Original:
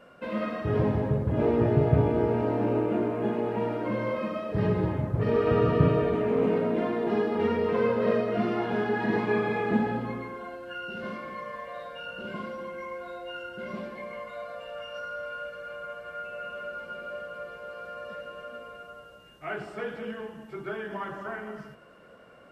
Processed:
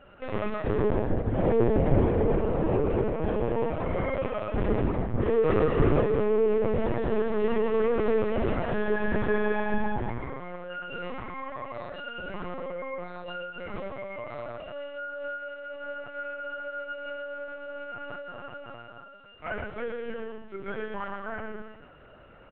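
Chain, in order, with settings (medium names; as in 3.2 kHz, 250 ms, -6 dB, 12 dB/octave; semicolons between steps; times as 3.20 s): in parallel at -9 dB: one-sided clip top -25 dBFS; on the sum: delay 116 ms -5.5 dB; LPC vocoder at 8 kHz pitch kept; trim -2.5 dB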